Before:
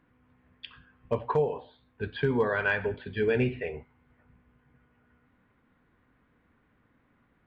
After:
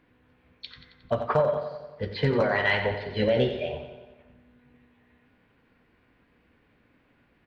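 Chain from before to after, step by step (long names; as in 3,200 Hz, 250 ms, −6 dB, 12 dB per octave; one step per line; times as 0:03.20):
formants moved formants +4 semitones
repeating echo 90 ms, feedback 58%, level −10 dB
on a send at −14 dB: convolution reverb RT60 1.3 s, pre-delay 22 ms
on the sum: level +2.5 dB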